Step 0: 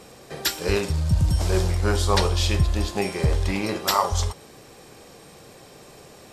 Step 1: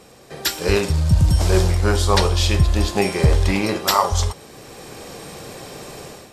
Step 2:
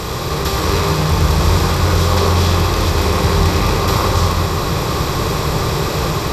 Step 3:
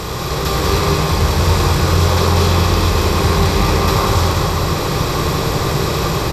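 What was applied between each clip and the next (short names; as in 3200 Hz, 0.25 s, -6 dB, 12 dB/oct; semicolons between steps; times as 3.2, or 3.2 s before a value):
AGC gain up to 12 dB; gain -1 dB
per-bin compression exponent 0.2; shoebox room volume 210 m³, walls hard, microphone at 0.55 m; gain -10 dB
echo 0.192 s -3.5 dB; gain -1 dB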